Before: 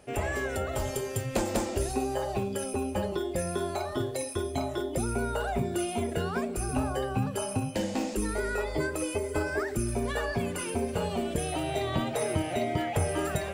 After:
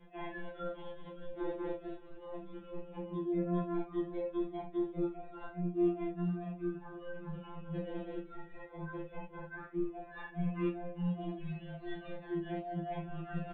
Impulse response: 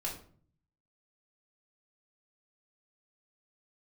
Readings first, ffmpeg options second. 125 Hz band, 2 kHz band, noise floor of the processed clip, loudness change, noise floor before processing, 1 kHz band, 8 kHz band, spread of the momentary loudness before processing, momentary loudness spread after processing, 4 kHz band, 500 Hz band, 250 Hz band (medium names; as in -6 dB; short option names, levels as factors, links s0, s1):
-8.5 dB, -14.5 dB, -53 dBFS, -8.5 dB, -36 dBFS, -12.5 dB, under -40 dB, 2 LU, 13 LU, under -15 dB, -10.0 dB, -5.0 dB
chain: -filter_complex "[0:a]acrossover=split=2100[s0][s1];[s0]dynaudnorm=f=840:g=3:m=1.78[s2];[s2][s1]amix=inputs=2:normalize=0,aresample=8000,aresample=44100,highshelf=f=2800:g=-10,tremolo=f=4.8:d=0.99,alimiter=limit=0.0944:level=0:latency=1:release=207,aecho=1:1:569|1138|1707|2276|2845:0.0841|0.0505|0.0303|0.0182|0.0109[s3];[1:a]atrim=start_sample=2205,atrim=end_sample=3969[s4];[s3][s4]afir=irnorm=-1:irlink=0,areverse,acompressor=threshold=0.0141:ratio=12,areverse,adynamicequalizer=threshold=0.002:dfrequency=920:dqfactor=0.83:tfrequency=920:tqfactor=0.83:attack=5:release=100:ratio=0.375:range=2.5:mode=cutabove:tftype=bell,afftfilt=real='re*2.83*eq(mod(b,8),0)':imag='im*2.83*eq(mod(b,8),0)':win_size=2048:overlap=0.75,volume=1.88"